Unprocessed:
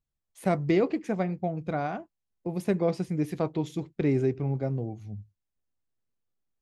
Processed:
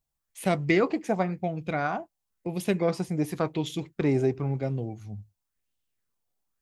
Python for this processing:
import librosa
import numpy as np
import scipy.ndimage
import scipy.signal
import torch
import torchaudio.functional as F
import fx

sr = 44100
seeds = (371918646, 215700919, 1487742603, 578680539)

y = fx.high_shelf(x, sr, hz=4700.0, db=9.0)
y = fx.bell_lfo(y, sr, hz=0.95, low_hz=700.0, high_hz=3200.0, db=10)